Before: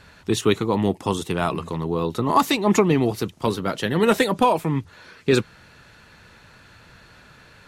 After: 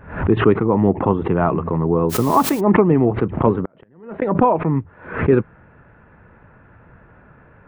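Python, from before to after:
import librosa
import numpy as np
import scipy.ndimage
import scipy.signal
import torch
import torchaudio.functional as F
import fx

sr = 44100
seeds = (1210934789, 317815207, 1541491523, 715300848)

p1 = fx.rider(x, sr, range_db=10, speed_s=0.5)
p2 = x + (p1 * librosa.db_to_amplitude(0.5))
p3 = fx.gate_flip(p2, sr, shuts_db=-8.0, range_db=-42, at=(3.54, 4.22))
p4 = scipy.ndimage.gaussian_filter1d(p3, 5.4, mode='constant')
p5 = fx.quant_dither(p4, sr, seeds[0], bits=6, dither='triangular', at=(2.09, 2.59), fade=0.02)
p6 = fx.pre_swell(p5, sr, db_per_s=110.0)
y = p6 * librosa.db_to_amplitude(-1.0)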